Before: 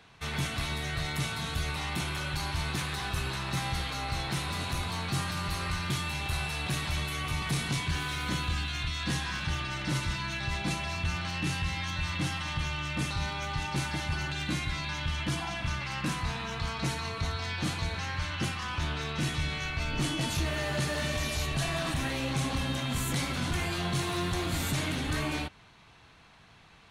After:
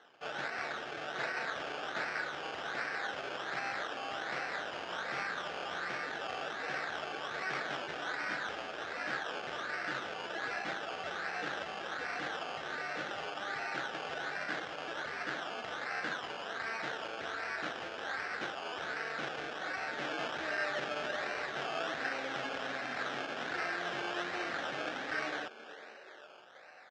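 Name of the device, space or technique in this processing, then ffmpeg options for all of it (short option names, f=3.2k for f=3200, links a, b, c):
circuit-bent sampling toy: -filter_complex "[0:a]asettb=1/sr,asplit=3[a][b][c];[a]atrim=end=1.194[d];[b]atrim=start=1.19:end=2.19,asetpts=PTS-STARTPTS,afade=t=in:d=0.004:c=qsin,afade=t=out:st=0.996:d=0.004:c=qsin,highshelf=f=4k:t=q:w=1.5:g=6[e];[c]atrim=start=2.186[f];[d][e]acrossfade=d=0.004:c1=hsin:c2=qsin[g];[g][f]acrossfade=d=0.004:c1=qsin:c2=hsin,asplit=7[h][i][j][k][l][m][n];[i]adelay=483,afreqshift=150,volume=-17dB[o];[j]adelay=966,afreqshift=300,volume=-21.6dB[p];[k]adelay=1449,afreqshift=450,volume=-26.2dB[q];[l]adelay=1932,afreqshift=600,volume=-30.7dB[r];[m]adelay=2415,afreqshift=750,volume=-35.3dB[s];[n]adelay=2898,afreqshift=900,volume=-39.9dB[t];[h][o][p][q][r][s][t]amix=inputs=7:normalize=0,acrusher=samples=18:mix=1:aa=0.000001:lfo=1:lforange=10.8:lforate=1.3,highpass=570,equalizer=f=1k:t=q:w=4:g=-10,equalizer=f=1.6k:t=q:w=4:g=6,equalizer=f=4.5k:t=q:w=4:g=-5,lowpass=f=5k:w=0.5412,lowpass=f=5k:w=1.3066"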